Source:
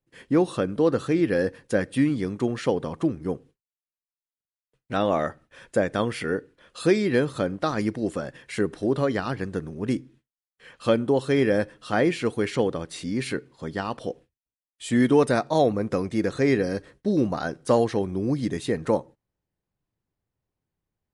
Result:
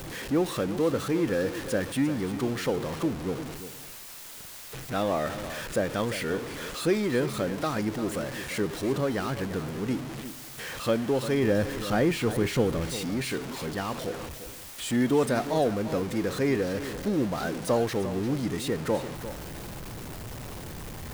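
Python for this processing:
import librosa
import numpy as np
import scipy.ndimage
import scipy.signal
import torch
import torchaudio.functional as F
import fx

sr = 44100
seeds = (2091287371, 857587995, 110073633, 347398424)

y = x + 0.5 * 10.0 ** (-26.0 / 20.0) * np.sign(x)
y = fx.low_shelf(y, sr, hz=180.0, db=9.0, at=(11.43, 12.97))
y = y + 10.0 ** (-12.0 / 20.0) * np.pad(y, (int(347 * sr / 1000.0), 0))[:len(y)]
y = y * librosa.db_to_amplitude(-6.0)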